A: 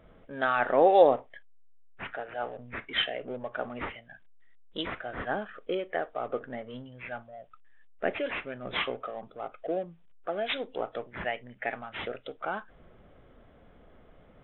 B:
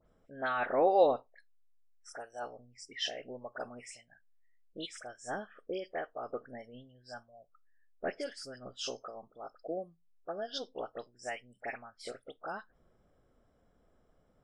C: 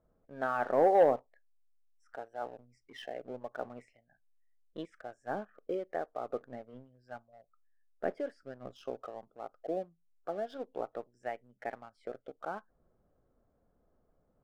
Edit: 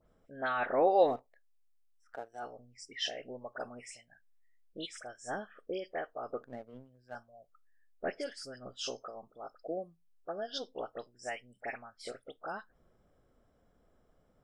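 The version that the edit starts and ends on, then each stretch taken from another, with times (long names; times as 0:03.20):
B
0:01.13–0:02.38: punch in from C, crossfade 0.24 s
0:06.43–0:07.15: punch in from C
not used: A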